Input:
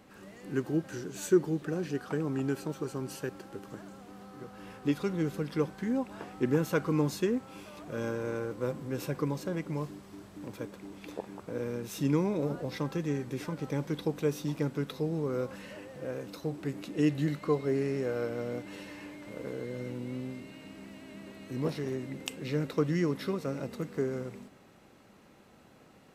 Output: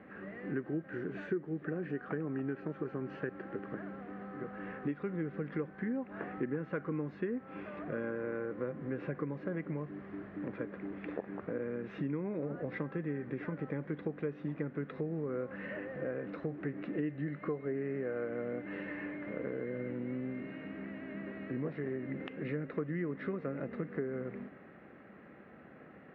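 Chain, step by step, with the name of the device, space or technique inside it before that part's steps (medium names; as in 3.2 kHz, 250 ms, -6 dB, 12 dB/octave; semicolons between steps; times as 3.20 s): bass amplifier (compression 5:1, threshold -38 dBFS, peak gain reduction 17.5 dB; cabinet simulation 84–2100 Hz, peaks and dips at 110 Hz -8 dB, 920 Hz -8 dB, 1.8 kHz +6 dB); trim +4.5 dB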